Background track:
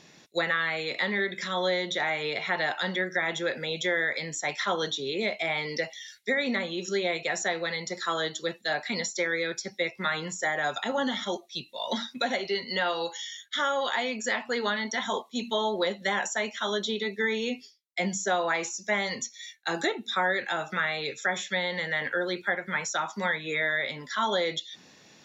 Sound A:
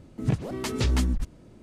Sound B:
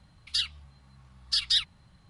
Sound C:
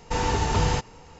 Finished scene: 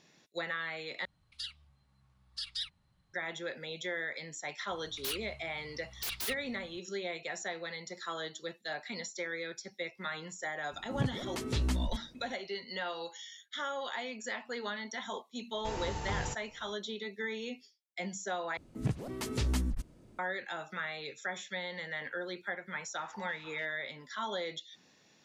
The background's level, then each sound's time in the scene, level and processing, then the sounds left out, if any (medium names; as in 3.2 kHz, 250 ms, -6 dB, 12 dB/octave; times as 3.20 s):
background track -10 dB
1.05 s: replace with B -13.5 dB
4.70 s: add B -1.5 dB + wavefolder -29.5 dBFS
10.72 s: add A -7.5 dB
15.54 s: add C -14 dB
18.57 s: replace with A -7.5 dB + treble shelf 9.4 kHz +7 dB
22.85 s: add C -16.5 dB + step-sequenced band-pass 6.8 Hz 690–2900 Hz